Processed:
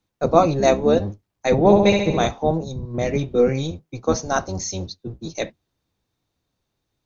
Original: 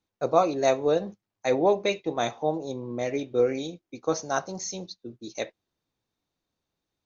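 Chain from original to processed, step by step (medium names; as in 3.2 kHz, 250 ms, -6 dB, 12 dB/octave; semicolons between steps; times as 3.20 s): octave divider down 1 oct, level +2 dB; 1.58–2.26 s: flutter echo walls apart 11.8 m, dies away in 0.94 s; 2.64–2.94 s: time-frequency box 230–3600 Hz -9 dB; trim +5.5 dB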